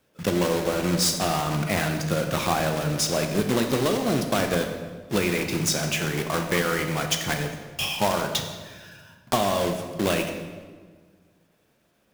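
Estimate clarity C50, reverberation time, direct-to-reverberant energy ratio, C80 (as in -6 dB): 6.5 dB, 1.5 s, 4.0 dB, 8.0 dB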